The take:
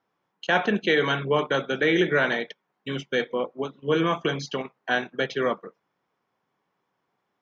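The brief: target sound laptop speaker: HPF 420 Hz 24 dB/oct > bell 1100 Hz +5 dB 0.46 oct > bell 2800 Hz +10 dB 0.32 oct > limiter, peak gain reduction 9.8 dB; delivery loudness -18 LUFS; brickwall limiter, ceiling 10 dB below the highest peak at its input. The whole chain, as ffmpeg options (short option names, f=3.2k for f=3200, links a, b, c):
-af "alimiter=limit=-20dB:level=0:latency=1,highpass=f=420:w=0.5412,highpass=f=420:w=1.3066,equalizer=f=1.1k:t=o:w=0.46:g=5,equalizer=f=2.8k:t=o:w=0.32:g=10,volume=18dB,alimiter=limit=-8dB:level=0:latency=1"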